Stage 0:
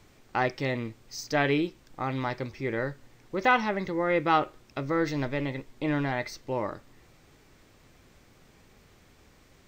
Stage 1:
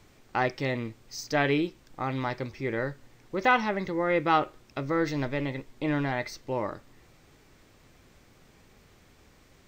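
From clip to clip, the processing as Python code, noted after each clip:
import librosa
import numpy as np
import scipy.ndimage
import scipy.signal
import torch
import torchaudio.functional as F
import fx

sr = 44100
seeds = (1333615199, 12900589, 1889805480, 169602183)

y = x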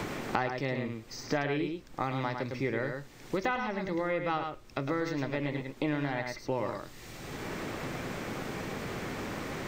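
y = fx.rider(x, sr, range_db=10, speed_s=2.0)
y = y + 10.0 ** (-6.5 / 20.0) * np.pad(y, (int(105 * sr / 1000.0), 0))[:len(y)]
y = fx.band_squash(y, sr, depth_pct=100)
y = y * 10.0 ** (-6.0 / 20.0)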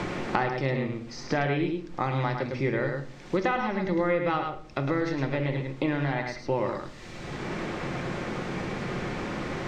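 y = fx.air_absorb(x, sr, metres=78.0)
y = fx.room_shoebox(y, sr, seeds[0], volume_m3=860.0, walls='furnished', distance_m=0.91)
y = y * 10.0 ** (4.0 / 20.0)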